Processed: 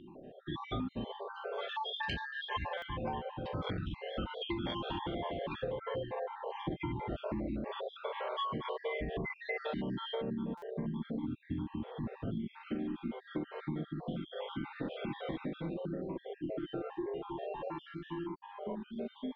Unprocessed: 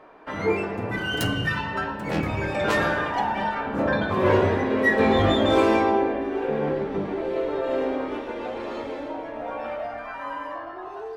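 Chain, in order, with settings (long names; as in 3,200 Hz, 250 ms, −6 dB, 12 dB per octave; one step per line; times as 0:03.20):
time-frequency cells dropped at random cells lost 56%
brickwall limiter −18 dBFS, peak gain reduction 8.5 dB
low-pass with resonance 5,700 Hz, resonance Q 14
parametric band 2,200 Hz −3 dB 0.87 octaves
downward compressor 6 to 1, threshold −35 dBFS, peak gain reduction 12 dB
wrong playback speed 78 rpm record played at 45 rpm
buffer that repeats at 0:02.77/0:10.57, samples 256, times 8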